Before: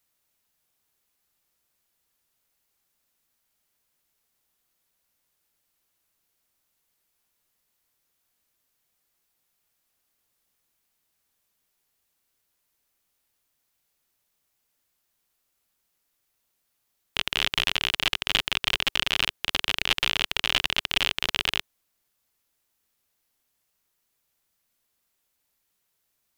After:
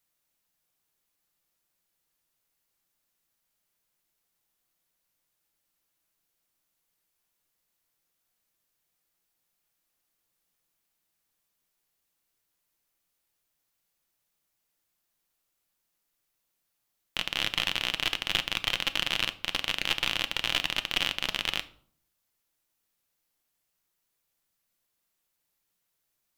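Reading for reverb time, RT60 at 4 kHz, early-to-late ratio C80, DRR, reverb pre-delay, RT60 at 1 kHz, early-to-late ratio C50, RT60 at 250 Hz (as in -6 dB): 0.55 s, 0.40 s, 21.5 dB, 10.5 dB, 6 ms, 0.55 s, 17.5 dB, 0.75 s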